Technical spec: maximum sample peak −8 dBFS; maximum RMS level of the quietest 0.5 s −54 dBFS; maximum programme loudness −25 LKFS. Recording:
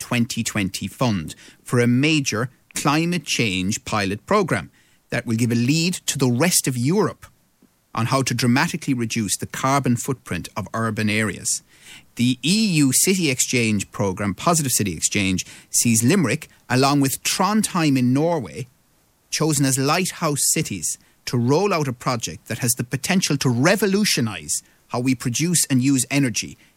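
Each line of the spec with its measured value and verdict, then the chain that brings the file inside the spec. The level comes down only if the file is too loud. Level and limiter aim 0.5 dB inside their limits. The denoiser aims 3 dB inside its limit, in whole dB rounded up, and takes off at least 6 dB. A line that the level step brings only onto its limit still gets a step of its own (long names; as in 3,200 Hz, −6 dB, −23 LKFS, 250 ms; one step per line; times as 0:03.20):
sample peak −5.0 dBFS: out of spec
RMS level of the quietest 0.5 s −61 dBFS: in spec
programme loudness −20.5 LKFS: out of spec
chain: level −5 dB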